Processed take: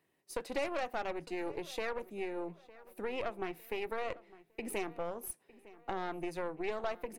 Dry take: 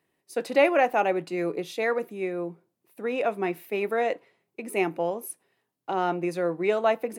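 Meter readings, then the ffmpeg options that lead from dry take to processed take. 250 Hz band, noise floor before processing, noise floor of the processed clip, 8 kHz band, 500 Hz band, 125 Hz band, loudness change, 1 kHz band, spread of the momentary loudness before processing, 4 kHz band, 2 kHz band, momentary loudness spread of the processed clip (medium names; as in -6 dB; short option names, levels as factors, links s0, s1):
-11.5 dB, -80 dBFS, -75 dBFS, -5.0 dB, -13.0 dB, -12.5 dB, -12.5 dB, -12.5 dB, 14 LU, -7.0 dB, -11.5 dB, 9 LU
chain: -filter_complex "[0:a]aeval=exprs='0.398*(cos(1*acos(clip(val(0)/0.398,-1,1)))-cos(1*PI/2))+0.0447*(cos(8*acos(clip(val(0)/0.398,-1,1)))-cos(8*PI/2))':c=same,acompressor=threshold=0.02:ratio=3,asplit=2[s0][s1];[s1]adelay=906,lowpass=f=2700:p=1,volume=0.112,asplit=2[s2][s3];[s3]adelay=906,lowpass=f=2700:p=1,volume=0.42,asplit=2[s4][s5];[s5]adelay=906,lowpass=f=2700:p=1,volume=0.42[s6];[s0][s2][s4][s6]amix=inputs=4:normalize=0,volume=0.75"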